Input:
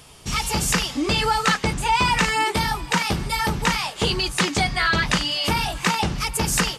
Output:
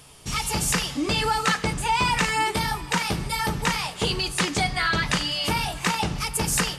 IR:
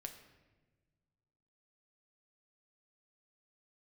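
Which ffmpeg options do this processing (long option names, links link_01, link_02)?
-filter_complex "[0:a]asplit=2[link_01][link_02];[link_02]equalizer=frequency=10000:width_type=o:width=0.74:gain=7.5[link_03];[1:a]atrim=start_sample=2205[link_04];[link_03][link_04]afir=irnorm=-1:irlink=0,volume=0.5dB[link_05];[link_01][link_05]amix=inputs=2:normalize=0,volume=-7dB"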